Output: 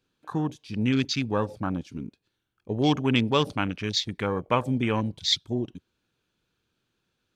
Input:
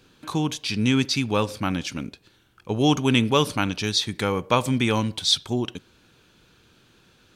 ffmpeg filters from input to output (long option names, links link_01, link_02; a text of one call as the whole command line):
ffmpeg -i in.wav -af "afwtdn=0.0355,volume=-3dB" out.wav